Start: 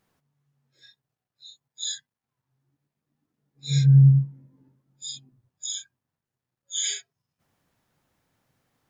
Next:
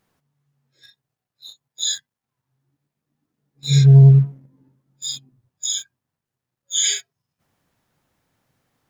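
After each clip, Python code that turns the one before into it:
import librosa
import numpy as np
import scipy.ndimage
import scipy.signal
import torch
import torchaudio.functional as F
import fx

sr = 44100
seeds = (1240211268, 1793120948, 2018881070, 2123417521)

y = fx.leveller(x, sr, passes=1)
y = F.gain(torch.from_numpy(y), 4.5).numpy()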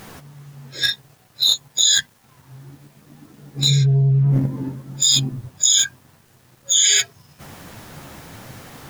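y = fx.chorus_voices(x, sr, voices=4, hz=1.4, base_ms=12, depth_ms=3.0, mix_pct=20)
y = fx.env_flatten(y, sr, amount_pct=100)
y = F.gain(torch.from_numpy(y), -8.0).numpy()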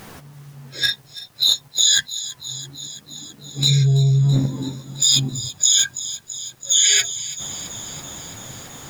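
y = fx.echo_wet_highpass(x, sr, ms=332, feedback_pct=72, hz=3500.0, wet_db=-12.5)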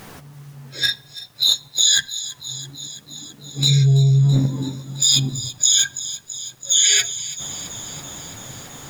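y = fx.room_shoebox(x, sr, seeds[0], volume_m3=3900.0, walls='furnished', distance_m=0.34)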